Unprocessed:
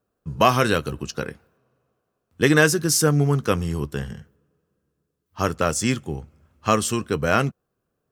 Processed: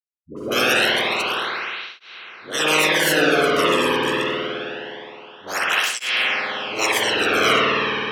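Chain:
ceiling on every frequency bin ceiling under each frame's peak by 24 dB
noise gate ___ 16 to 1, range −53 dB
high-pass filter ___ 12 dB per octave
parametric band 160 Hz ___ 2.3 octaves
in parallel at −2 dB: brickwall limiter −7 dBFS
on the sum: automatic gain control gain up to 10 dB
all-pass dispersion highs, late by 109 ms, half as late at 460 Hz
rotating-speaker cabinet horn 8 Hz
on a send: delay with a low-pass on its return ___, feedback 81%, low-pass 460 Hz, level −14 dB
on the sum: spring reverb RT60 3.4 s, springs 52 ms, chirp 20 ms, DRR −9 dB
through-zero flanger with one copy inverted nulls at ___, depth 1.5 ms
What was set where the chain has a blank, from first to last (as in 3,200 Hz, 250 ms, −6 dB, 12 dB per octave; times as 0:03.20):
−54 dBFS, 100 Hz, −7 dB, 71 ms, 0.25 Hz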